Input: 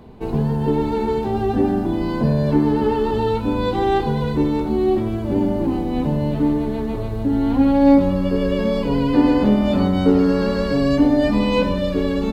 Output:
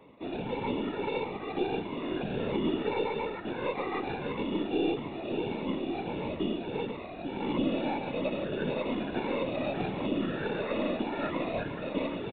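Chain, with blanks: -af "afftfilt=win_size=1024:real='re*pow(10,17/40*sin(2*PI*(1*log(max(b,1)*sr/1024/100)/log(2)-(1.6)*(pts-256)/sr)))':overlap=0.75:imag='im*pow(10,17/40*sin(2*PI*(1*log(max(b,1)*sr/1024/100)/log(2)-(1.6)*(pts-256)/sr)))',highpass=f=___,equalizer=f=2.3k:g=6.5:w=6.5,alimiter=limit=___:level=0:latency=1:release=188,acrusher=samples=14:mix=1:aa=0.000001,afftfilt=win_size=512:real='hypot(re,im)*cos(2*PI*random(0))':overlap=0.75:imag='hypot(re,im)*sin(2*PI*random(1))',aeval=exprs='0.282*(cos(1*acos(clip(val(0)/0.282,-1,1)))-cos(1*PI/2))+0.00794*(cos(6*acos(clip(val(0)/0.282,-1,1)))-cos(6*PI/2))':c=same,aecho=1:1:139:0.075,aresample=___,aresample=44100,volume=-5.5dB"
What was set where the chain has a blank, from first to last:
300, -11dB, 8000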